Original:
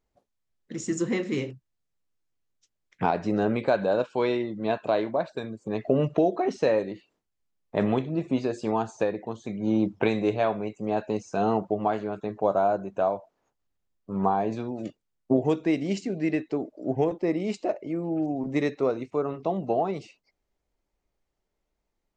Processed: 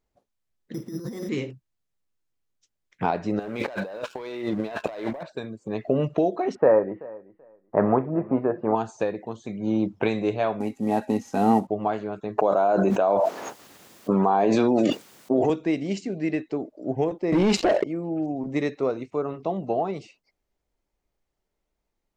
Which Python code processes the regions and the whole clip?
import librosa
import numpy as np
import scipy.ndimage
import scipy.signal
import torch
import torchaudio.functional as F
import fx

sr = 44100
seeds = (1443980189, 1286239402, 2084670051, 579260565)

y = fx.chain(x, sr, fx.lowpass(hz=1400.0, slope=12),
    fx.over_compress(threshold_db=-33.0, ratio=-1.0),
    fx.resample_bad(factor=8, down='filtered', up='hold'), at=(0.74, 1.29))
y = fx.chain(y, sr, fx.low_shelf(hz=270.0, db=-10.0),
    fx.leveller(passes=2),
    fx.over_compress(threshold_db=-32.0, ratio=-1.0), at=(3.39, 5.23))
y = fx.chain(y, sr, fx.lowpass(hz=1500.0, slope=24),
    fx.peak_eq(hz=1100.0, db=9.0, octaves=2.6),
    fx.echo_feedback(ms=383, feedback_pct=18, wet_db=-21.0), at=(6.55, 8.75))
y = fx.chain(y, sr, fx.cvsd(bps=64000),
    fx.small_body(hz=(250.0, 810.0, 1900.0), ring_ms=95, db=17), at=(10.6, 11.67))
y = fx.chain(y, sr, fx.highpass(hz=230.0, slope=12),
    fx.env_flatten(amount_pct=100), at=(12.38, 15.5))
y = fx.chain(y, sr, fx.leveller(passes=3),
    fx.air_absorb(metres=56.0),
    fx.env_flatten(amount_pct=70), at=(17.32, 17.84))